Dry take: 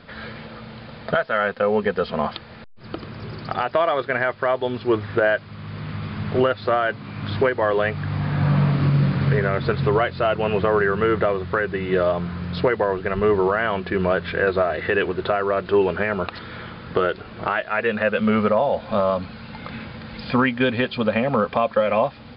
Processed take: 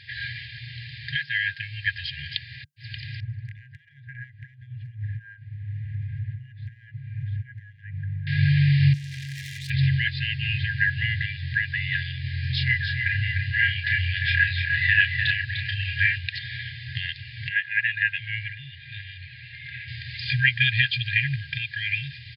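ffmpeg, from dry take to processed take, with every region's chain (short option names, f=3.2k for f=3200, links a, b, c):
-filter_complex "[0:a]asettb=1/sr,asplit=3[a][b][c];[a]atrim=end=3.204[d];[b]atrim=start=3.2:end=8.27,asetpts=PTS-STARTPTS,afade=t=in:d=0.004:c=qsin,afade=t=out:st=5.066:d=0.004:c=qsin,lowpass=f=740:t=q:w=1.8,acompressor=threshold=-26dB:ratio=12:attack=3.2:release=140:knee=1:detection=peak[e];[c]atrim=start=8.266[f];[d][e]acrossfade=d=0.004:c1=hsin:c2=qsin[g];[g][f]acrossfade=d=0.004:c1=qsin:c2=hsin,asettb=1/sr,asplit=3[h][i][j];[h]atrim=end=8.934[k];[i]atrim=start=8.93:end=9.7,asetpts=PTS-STARTPTS,afade=t=in:d=0.004:c=qsin,afade=t=out:st=0.766:d=0.004:c=qsin,highshelf=f=2.2k:g=4.5,bandreject=f=50:t=h:w=6,bandreject=f=100:t=h:w=6,bandreject=f=150:t=h:w=6,bandreject=f=200:t=h:w=6,aeval=exprs='(tanh(63.1*val(0)+0.75)-tanh(0.75))/63.1':c=same[l];[j]atrim=start=9.696[m];[k][l]acrossfade=d=0.004:c1=hsin:c2=qsin[n];[n][m]acrossfade=d=0.004:c1=qsin:c2=hsin,asettb=1/sr,asplit=3[o][p][q];[o]atrim=end=12.214[r];[p]atrim=start=12.21:end=16.18,asetpts=PTS-STARTPTS,afade=t=in:d=0.004:c=qsin,afade=t=out:st=3.966:d=0.004:c=qsin,asplit=2[s][t];[t]adelay=32,volume=-4dB[u];[s][u]amix=inputs=2:normalize=0,atrim=end_sample=175077,aecho=1:1:299:0.501,atrim=end_sample=175077[v];[q]atrim=start=16.176[w];[r][v]acrossfade=d=0.004:c1=hsin:c2=qsin[x];[x][w]acrossfade=d=0.004:c1=qsin:c2=hsin,asettb=1/sr,asplit=3[y][z][aa];[y]atrim=end=17.494[ab];[z]atrim=start=17.49:end=19.88,asetpts=PTS-STARTPTS,afade=t=in:d=0.004:c=qsin,afade=t=out:st=2.386:d=0.004:c=qsin,lowpass=2.5k,lowshelf=f=360:g=-7.5[ac];[aa]atrim=start=19.876[ad];[ab][ac]acrossfade=d=0.004:c1=hsin:c2=qsin[ae];[ae][ad]acrossfade=d=0.004:c1=qsin:c2=hsin,afftfilt=real='re*(1-between(b*sr/4096,140,1600))':imag='im*(1-between(b*sr/4096,140,1600))':win_size=4096:overlap=0.75,highpass=f=93:w=0.5412,highpass=f=93:w=1.3066,aecho=1:1:2.5:0.32,volume=5.5dB"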